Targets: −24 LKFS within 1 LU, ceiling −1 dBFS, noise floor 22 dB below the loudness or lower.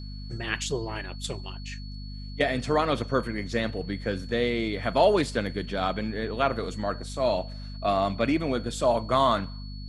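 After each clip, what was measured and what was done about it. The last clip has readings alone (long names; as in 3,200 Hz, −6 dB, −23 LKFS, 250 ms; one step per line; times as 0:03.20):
mains hum 50 Hz; hum harmonics up to 250 Hz; level of the hum −35 dBFS; interfering tone 4,400 Hz; level of the tone −47 dBFS; integrated loudness −27.5 LKFS; sample peak −9.0 dBFS; target loudness −24.0 LKFS
→ hum removal 50 Hz, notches 5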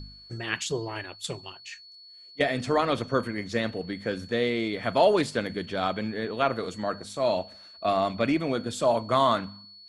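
mains hum none found; interfering tone 4,400 Hz; level of the tone −47 dBFS
→ notch filter 4,400 Hz, Q 30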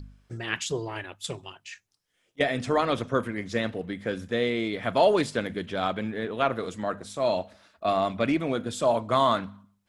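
interfering tone none found; integrated loudness −27.5 LKFS; sample peak −9.5 dBFS; target loudness −24.0 LKFS
→ level +3.5 dB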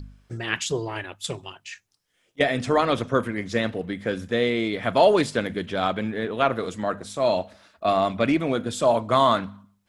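integrated loudness −24.0 LKFS; sample peak −6.0 dBFS; background noise floor −69 dBFS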